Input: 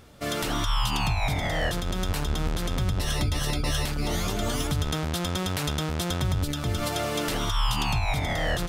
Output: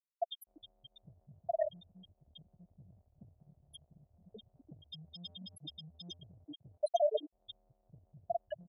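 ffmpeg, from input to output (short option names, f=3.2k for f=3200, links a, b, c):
-filter_complex "[0:a]asettb=1/sr,asplit=3[a][b][c];[a]atrim=end=4.204[d];[b]atrim=start=4.2:end=6.23,asetpts=PTS-STARTPTS,afade=t=in:d=0.004:c=qsin,afade=t=out:st=2.026:d=0.004:c=qsin,aeval=exprs='val(0)+0.5*0.0158*sgn(val(0))':c=same[e];[c]atrim=start=6.226[f];[d][e]acrossfade=d=0.004:c1=hsin:c2=qsin[g];[g][f]acrossfade=d=0.004:c1=qsin:c2=hsin,alimiter=level_in=0.5dB:limit=-24dB:level=0:latency=1:release=297,volume=-0.5dB,crystalizer=i=3.5:c=0,asplit=2[h][i];[i]aecho=0:1:322:0.1[j];[h][j]amix=inputs=2:normalize=0,afftfilt=real='re*gte(hypot(re,im),0.141)':imag='im*gte(hypot(re,im),0.141)':win_size=1024:overlap=0.75,acompressor=threshold=-34dB:ratio=6,highpass=f=670:t=q:w=5.8,tiltshelf=f=1.2k:g=8,volume=3dB"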